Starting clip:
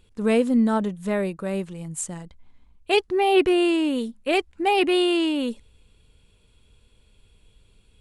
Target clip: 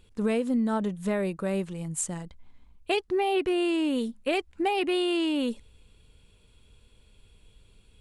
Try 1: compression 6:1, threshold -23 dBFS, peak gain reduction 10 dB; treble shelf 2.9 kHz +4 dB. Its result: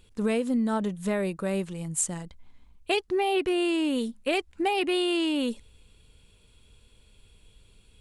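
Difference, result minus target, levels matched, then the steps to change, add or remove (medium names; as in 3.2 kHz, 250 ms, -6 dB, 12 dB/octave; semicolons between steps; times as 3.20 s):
8 kHz band +3.0 dB
remove: treble shelf 2.9 kHz +4 dB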